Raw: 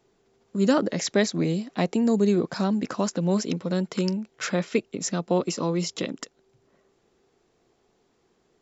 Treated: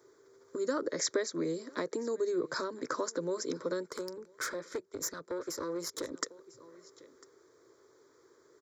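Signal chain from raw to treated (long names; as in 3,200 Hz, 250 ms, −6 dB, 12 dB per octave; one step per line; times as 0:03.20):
downward compressor 6 to 1, threshold −32 dBFS, peak gain reduction 15.5 dB
single-tap delay 999 ms −23.5 dB
0:03.91–0:06.12: tube saturation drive 33 dB, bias 0.75
Bessel high-pass filter 190 Hz, order 2
phaser with its sweep stopped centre 750 Hz, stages 6
level +7 dB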